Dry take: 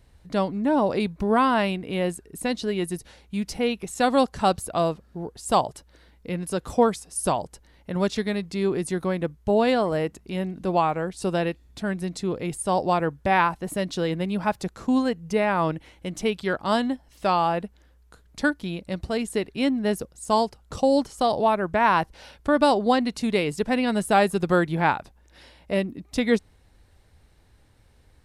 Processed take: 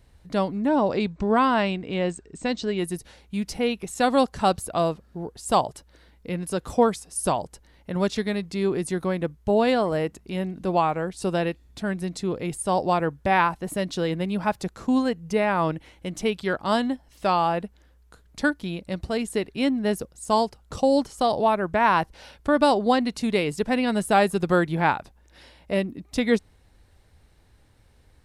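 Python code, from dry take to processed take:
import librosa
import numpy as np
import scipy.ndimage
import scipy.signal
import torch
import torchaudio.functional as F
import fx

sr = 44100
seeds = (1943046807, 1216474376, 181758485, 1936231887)

y = fx.brickwall_lowpass(x, sr, high_hz=8500.0, at=(0.67, 2.79))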